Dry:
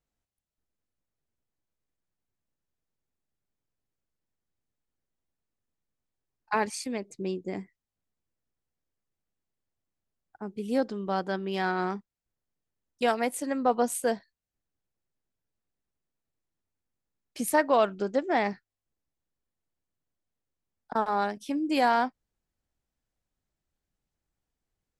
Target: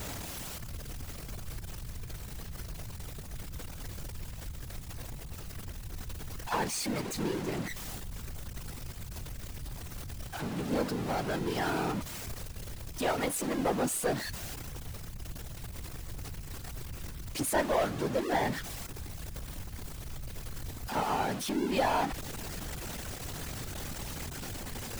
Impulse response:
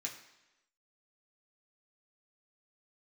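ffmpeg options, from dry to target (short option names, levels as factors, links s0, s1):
-af "aeval=exprs='val(0)+0.5*0.0531*sgn(val(0))':c=same,aeval=exprs='(tanh(5.62*val(0)+0.3)-tanh(0.3))/5.62':c=same,afftfilt=real='hypot(re,im)*cos(2*PI*random(0))':imag='hypot(re,im)*sin(2*PI*random(1))':win_size=512:overlap=0.75,volume=1.12"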